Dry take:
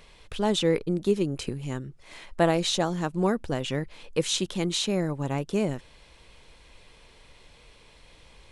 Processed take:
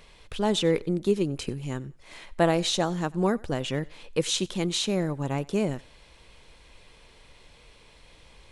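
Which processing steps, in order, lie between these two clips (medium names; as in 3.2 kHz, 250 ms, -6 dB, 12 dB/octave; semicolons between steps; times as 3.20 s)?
thinning echo 92 ms, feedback 32%, high-pass 420 Hz, level -23 dB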